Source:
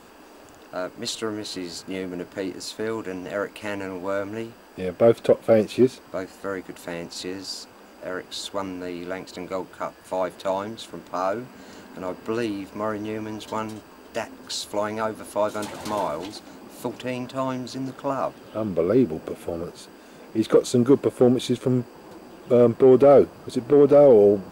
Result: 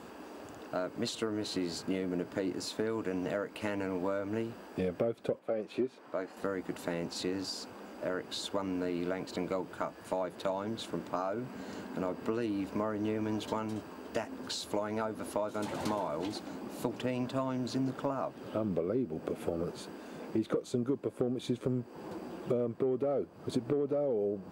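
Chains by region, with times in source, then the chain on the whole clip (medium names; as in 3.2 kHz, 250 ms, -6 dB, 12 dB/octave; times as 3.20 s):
5.39–6.37 s: high-pass 570 Hz 6 dB/octave + treble shelf 3.6 kHz -11.5 dB
whole clip: high-pass 100 Hz; compression 10:1, threshold -30 dBFS; tilt EQ -1.5 dB/octave; trim -1 dB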